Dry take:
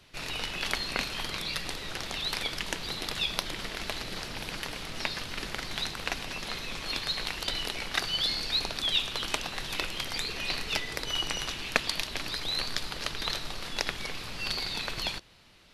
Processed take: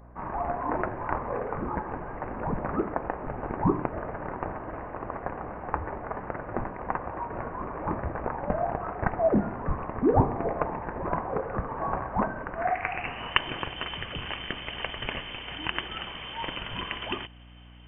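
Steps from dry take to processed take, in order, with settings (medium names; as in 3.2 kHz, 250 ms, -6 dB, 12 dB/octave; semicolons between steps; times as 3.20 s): band-stop 2.2 kHz, Q 28; tape speed -12%; high-pass sweep 2.6 kHz -> 200 Hz, 12.50–13.47 s; frequency inversion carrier 3.3 kHz; hum 60 Hz, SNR 19 dB; trim +1.5 dB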